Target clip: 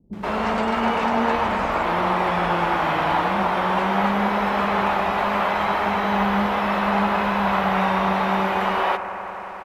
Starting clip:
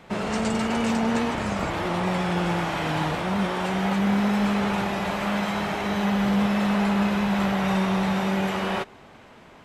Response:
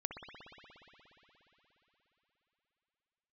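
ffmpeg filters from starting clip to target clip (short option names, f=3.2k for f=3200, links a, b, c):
-filter_complex "[0:a]acrossover=split=3900[a][b];[b]acompressor=threshold=-48dB:ratio=4:attack=1:release=60[c];[a][c]amix=inputs=2:normalize=0,equalizer=f=125:t=o:w=1:g=-11,equalizer=f=1k:t=o:w=1:g=6,equalizer=f=8k:t=o:w=1:g=-9,aeval=exprs='sgn(val(0))*max(abs(val(0))-0.00133,0)':c=same,acrossover=split=280[d][e];[e]adelay=130[f];[d][f]amix=inputs=2:normalize=0,asplit=2[g][h];[1:a]atrim=start_sample=2205,asetrate=29988,aresample=44100,highshelf=f=8.6k:g=9[i];[h][i]afir=irnorm=-1:irlink=0,volume=-5dB[j];[g][j]amix=inputs=2:normalize=0"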